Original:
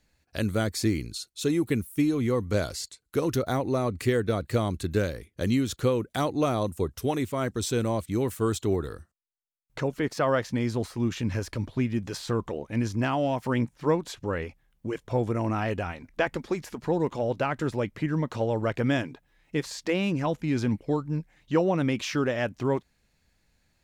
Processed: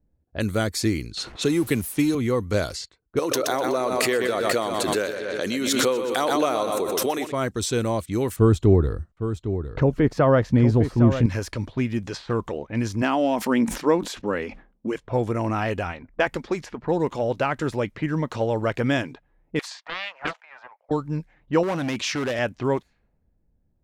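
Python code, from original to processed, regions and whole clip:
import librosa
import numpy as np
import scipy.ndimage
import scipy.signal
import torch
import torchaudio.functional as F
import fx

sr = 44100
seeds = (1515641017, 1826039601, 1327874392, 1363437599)

y = fx.chain(x, sr, fx.zero_step(step_db=-41.5),
    fx.high_shelf(hz=4900.0, db=4.0),
    fx.band_squash(depth_pct=40), at=(1.17, 2.15))
y = fx.chain(y, sr, fx.highpass(hz=360.0, slope=12),
    fx.echo_feedback(ms=124, feedback_pct=48, wet_db=-9.0),
    fx.pre_swell(db_per_s=21.0), at=(3.19, 7.32))
y = fx.chain(y, sr, fx.tilt_eq(slope=-3.5),
    fx.echo_single(ms=808, db=-10.0), at=(8.36, 11.26))
y = fx.chain(y, sr, fx.low_shelf_res(hz=170.0, db=-7.5, q=3.0),
    fx.sustainer(db_per_s=120.0), at=(13.02, 14.92))
y = fx.chain(y, sr, fx.steep_highpass(hz=650.0, slope=48),
    fx.doppler_dist(depth_ms=0.92), at=(19.59, 20.91))
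y = fx.chain(y, sr, fx.overload_stage(gain_db=25.5),
    fx.highpass(hz=59.0, slope=12),
    fx.high_shelf(hz=4900.0, db=6.0), at=(21.63, 22.39))
y = fx.env_lowpass(y, sr, base_hz=380.0, full_db=-25.5)
y = fx.peak_eq(y, sr, hz=150.0, db=-3.0, octaves=2.8)
y = y * 10.0 ** (4.5 / 20.0)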